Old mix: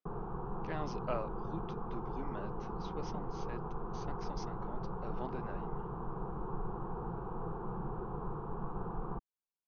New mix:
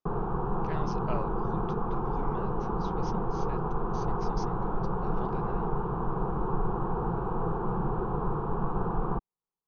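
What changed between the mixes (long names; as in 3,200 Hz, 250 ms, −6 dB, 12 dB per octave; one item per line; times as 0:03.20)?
background +10.0 dB
master: remove high-frequency loss of the air 76 metres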